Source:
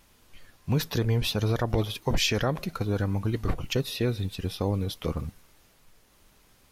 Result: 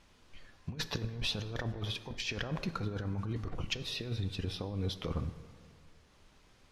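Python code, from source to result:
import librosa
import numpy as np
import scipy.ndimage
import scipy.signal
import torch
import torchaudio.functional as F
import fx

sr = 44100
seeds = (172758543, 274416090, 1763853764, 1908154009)

y = scipy.signal.sosfilt(scipy.signal.butter(2, 6000.0, 'lowpass', fs=sr, output='sos'), x)
y = fx.over_compress(y, sr, threshold_db=-29.0, ratio=-0.5)
y = fx.rev_plate(y, sr, seeds[0], rt60_s=2.0, hf_ratio=0.5, predelay_ms=0, drr_db=12.0)
y = F.gain(torch.from_numpy(y), -6.0).numpy()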